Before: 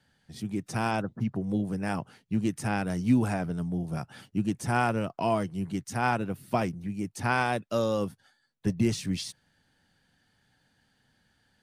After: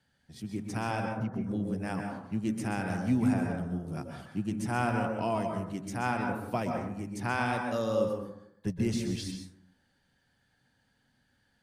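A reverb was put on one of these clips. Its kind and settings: plate-style reverb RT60 0.74 s, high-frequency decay 0.35×, pre-delay 0.115 s, DRR 2 dB; gain -5 dB

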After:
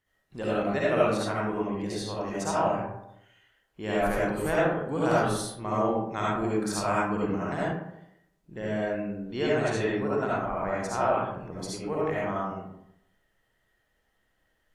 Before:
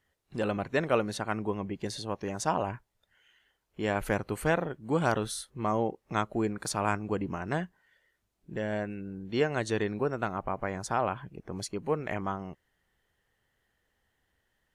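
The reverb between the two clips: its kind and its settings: digital reverb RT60 0.8 s, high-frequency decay 0.45×, pre-delay 30 ms, DRR -7.5 dB; gain -5 dB

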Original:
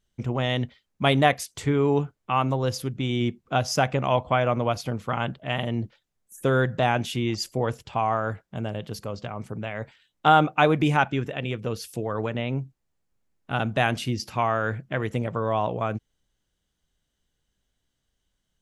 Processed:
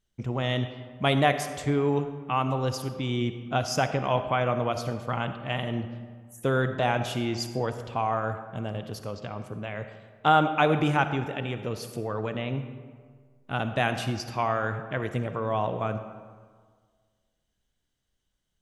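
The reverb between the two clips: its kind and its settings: digital reverb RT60 1.7 s, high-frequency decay 0.55×, pre-delay 20 ms, DRR 9 dB; gain -3 dB

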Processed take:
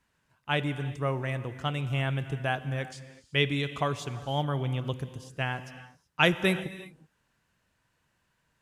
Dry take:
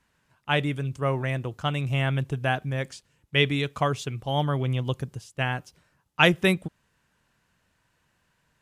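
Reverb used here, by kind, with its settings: non-linear reverb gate 0.4 s flat, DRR 12 dB; gain -4 dB

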